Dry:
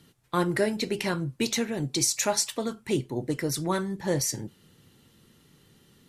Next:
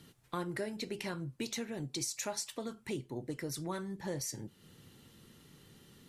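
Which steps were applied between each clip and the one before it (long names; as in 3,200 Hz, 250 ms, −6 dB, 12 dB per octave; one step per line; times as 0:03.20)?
downward compressor 2 to 1, threshold −45 dBFS, peak gain reduction 14 dB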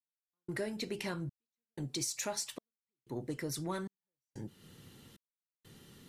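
in parallel at −8 dB: soft clipping −36.5 dBFS, distortion −11 dB
on the sum: gate pattern "...xxxxx" 93 BPM −60 dB
level −1 dB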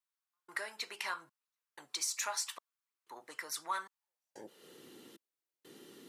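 high-pass filter sweep 1,100 Hz → 330 Hz, 0:03.87–0:04.88
level +1 dB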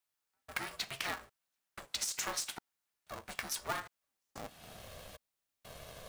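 downward compressor 3 to 1, threshold −40 dBFS, peak gain reduction 7.5 dB
ring modulator with a square carrier 270 Hz
level +5 dB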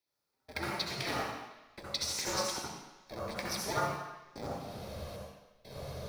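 convolution reverb RT60 1.0 s, pre-delay 61 ms, DRR −5.5 dB
level −6.5 dB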